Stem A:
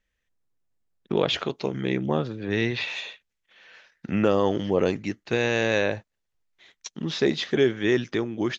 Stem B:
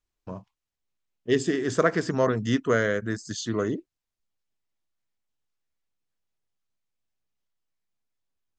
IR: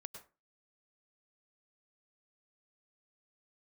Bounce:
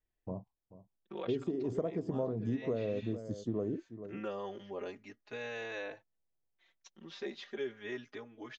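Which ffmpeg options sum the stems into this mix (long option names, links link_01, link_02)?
-filter_complex "[0:a]highpass=frequency=550:poles=1,highshelf=frequency=3500:gain=-8.5,asplit=2[link_01][link_02];[link_02]adelay=4.2,afreqshift=0.35[link_03];[link_01][link_03]amix=inputs=2:normalize=1,volume=-11dB[link_04];[1:a]firequalizer=gain_entry='entry(760,0);entry(1600,-28);entry(2300,-21)':delay=0.05:min_phase=1,volume=-2.5dB,asplit=2[link_05][link_06];[link_06]volume=-16.5dB,aecho=0:1:436:1[link_07];[link_04][link_05][link_07]amix=inputs=3:normalize=0,acompressor=threshold=-31dB:ratio=6"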